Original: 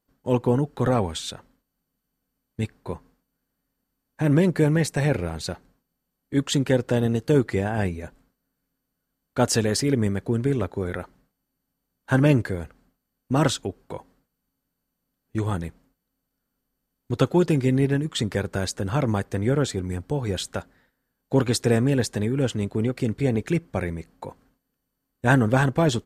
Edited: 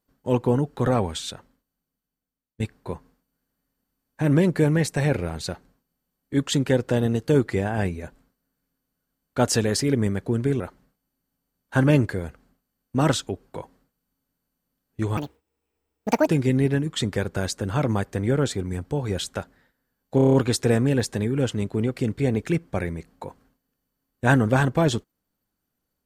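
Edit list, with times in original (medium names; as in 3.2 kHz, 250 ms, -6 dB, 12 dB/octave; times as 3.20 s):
1.24–2.60 s: fade out, to -20 dB
10.60–10.96 s: delete
15.53–17.46 s: speed 175%
21.34 s: stutter 0.03 s, 7 plays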